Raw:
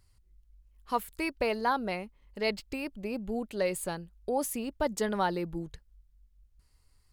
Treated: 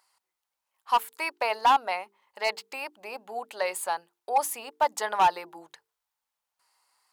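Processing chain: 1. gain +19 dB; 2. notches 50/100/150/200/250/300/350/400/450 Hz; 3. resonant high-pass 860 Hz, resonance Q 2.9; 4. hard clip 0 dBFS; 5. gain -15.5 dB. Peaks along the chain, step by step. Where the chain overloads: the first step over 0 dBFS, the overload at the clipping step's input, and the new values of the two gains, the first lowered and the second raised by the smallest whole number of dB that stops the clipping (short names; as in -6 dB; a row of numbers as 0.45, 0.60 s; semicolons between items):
+4.5, +3.5, +9.0, 0.0, -15.5 dBFS; step 1, 9.0 dB; step 1 +10 dB, step 5 -6.5 dB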